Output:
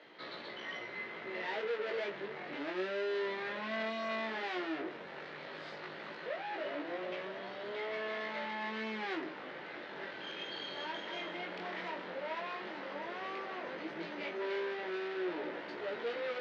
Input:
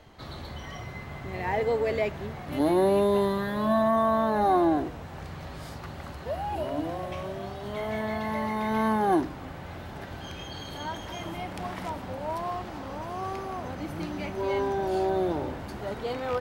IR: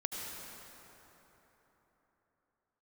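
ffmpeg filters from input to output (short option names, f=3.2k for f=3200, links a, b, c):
-af "aeval=exprs='(tanh(63.1*val(0)+0.4)-tanh(0.4))/63.1':c=same,flanger=delay=16.5:depth=6.1:speed=0.13,highpass=f=250:w=0.5412,highpass=f=250:w=1.3066,equalizer=f=260:t=q:w=4:g=-10,equalizer=f=760:t=q:w=4:g=-8,equalizer=f=1.1k:t=q:w=4:g=-5,equalizer=f=1.9k:t=q:w=4:g=4,lowpass=f=4.2k:w=0.5412,lowpass=f=4.2k:w=1.3066,volume=5.5dB"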